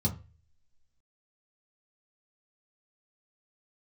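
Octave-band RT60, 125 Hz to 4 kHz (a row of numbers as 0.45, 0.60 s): 0.55, 0.30, 0.35, 0.30, 0.35, 0.25 s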